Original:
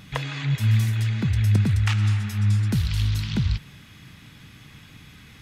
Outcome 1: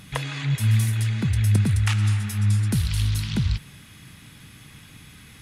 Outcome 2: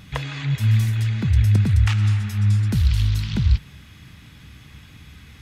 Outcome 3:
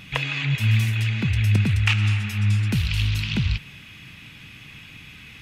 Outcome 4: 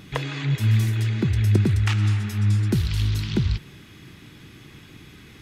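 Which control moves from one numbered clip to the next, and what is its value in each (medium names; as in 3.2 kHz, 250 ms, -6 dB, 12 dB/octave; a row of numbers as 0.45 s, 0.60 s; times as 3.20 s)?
peaking EQ, frequency: 10 kHz, 67 Hz, 2.6 kHz, 360 Hz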